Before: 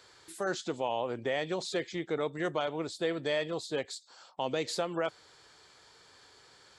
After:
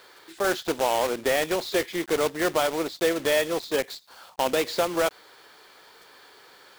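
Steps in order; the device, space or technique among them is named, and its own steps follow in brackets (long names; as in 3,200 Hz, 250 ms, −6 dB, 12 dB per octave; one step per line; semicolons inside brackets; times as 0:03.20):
early digital voice recorder (band-pass filter 260–3,700 Hz; one scale factor per block 3 bits)
level +8.5 dB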